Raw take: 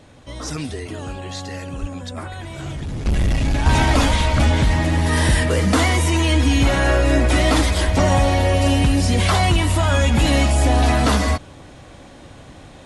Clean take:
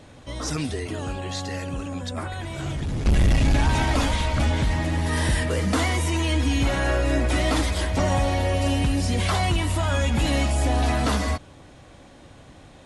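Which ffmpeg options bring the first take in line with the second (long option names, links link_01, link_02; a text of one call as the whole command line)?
ffmpeg -i in.wav -filter_complex "[0:a]asplit=3[link_01][link_02][link_03];[link_01]afade=type=out:start_time=1.8:duration=0.02[link_04];[link_02]highpass=frequency=140:width=0.5412,highpass=frequency=140:width=1.3066,afade=type=in:start_time=1.8:duration=0.02,afade=type=out:start_time=1.92:duration=0.02[link_05];[link_03]afade=type=in:start_time=1.92:duration=0.02[link_06];[link_04][link_05][link_06]amix=inputs=3:normalize=0,asplit=3[link_07][link_08][link_09];[link_07]afade=type=out:start_time=7.85:duration=0.02[link_10];[link_08]highpass=frequency=140:width=0.5412,highpass=frequency=140:width=1.3066,afade=type=in:start_time=7.85:duration=0.02,afade=type=out:start_time=7.97:duration=0.02[link_11];[link_09]afade=type=in:start_time=7.97:duration=0.02[link_12];[link_10][link_11][link_12]amix=inputs=3:normalize=0,asetnsamples=nb_out_samples=441:pad=0,asendcmd='3.66 volume volume -6dB',volume=0dB" out.wav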